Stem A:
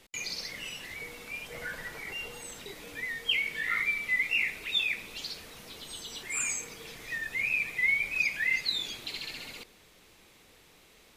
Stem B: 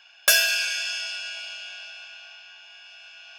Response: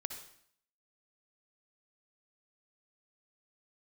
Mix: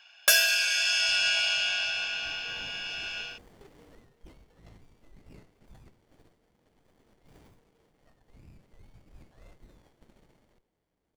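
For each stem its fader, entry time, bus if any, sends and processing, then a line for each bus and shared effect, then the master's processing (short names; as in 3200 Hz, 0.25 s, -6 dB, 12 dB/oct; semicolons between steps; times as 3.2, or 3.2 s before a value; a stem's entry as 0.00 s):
1.53 s -17.5 dB -> 2.25 s -7 dB -> 3.88 s -7 dB -> 4.15 s -18.5 dB, 0.95 s, no send, notch 1800 Hz, Q 15; running maximum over 33 samples
-3.0 dB, 0.00 s, no send, AGC gain up to 13.5 dB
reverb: off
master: dry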